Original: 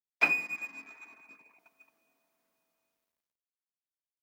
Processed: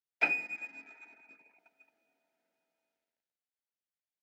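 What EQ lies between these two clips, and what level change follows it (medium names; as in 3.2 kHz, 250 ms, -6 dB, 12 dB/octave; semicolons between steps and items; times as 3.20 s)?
high-pass 280 Hz 6 dB/octave; Butterworth band-stop 1.1 kHz, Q 3.4; low-pass 2.4 kHz 6 dB/octave; 0.0 dB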